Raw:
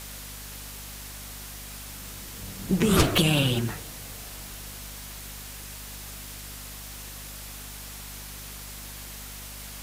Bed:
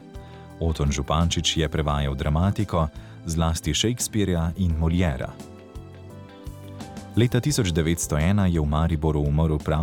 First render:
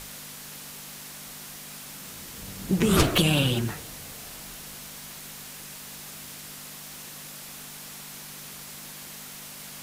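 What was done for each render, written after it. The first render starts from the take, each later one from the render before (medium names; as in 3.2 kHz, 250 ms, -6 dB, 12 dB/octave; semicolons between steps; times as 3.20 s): hum notches 50/100 Hz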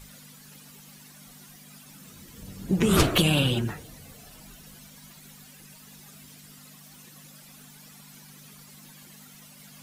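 noise reduction 13 dB, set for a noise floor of -42 dBFS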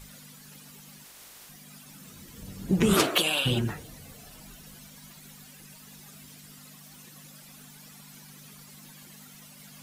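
1.03–1.48 s: spectral peaks clipped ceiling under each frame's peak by 24 dB; 2.93–3.45 s: high-pass 230 Hz -> 850 Hz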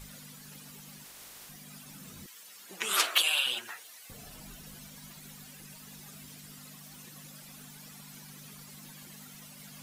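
2.26–4.10 s: high-pass 1.2 kHz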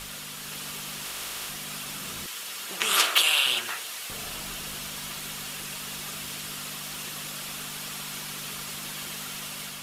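spectral levelling over time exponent 0.6; level rider gain up to 3 dB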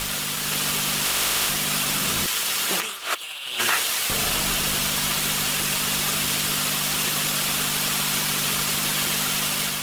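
waveshaping leveller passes 3; compressor with a negative ratio -21 dBFS, ratio -0.5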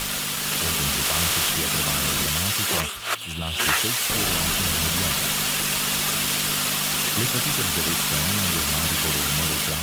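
add bed -9 dB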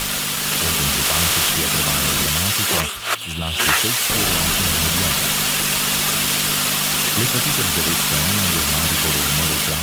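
trim +4.5 dB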